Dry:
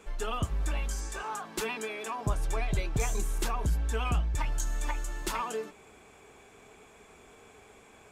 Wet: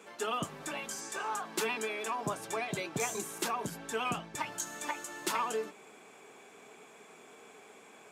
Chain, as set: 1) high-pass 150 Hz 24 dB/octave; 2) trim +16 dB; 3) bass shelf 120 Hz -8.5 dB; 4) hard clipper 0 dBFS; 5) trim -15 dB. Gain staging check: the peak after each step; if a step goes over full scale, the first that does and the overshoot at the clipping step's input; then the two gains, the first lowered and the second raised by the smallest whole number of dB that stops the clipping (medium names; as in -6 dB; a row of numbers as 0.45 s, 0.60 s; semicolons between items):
-19.0 dBFS, -3.0 dBFS, -4.0 dBFS, -4.0 dBFS, -19.0 dBFS; nothing clips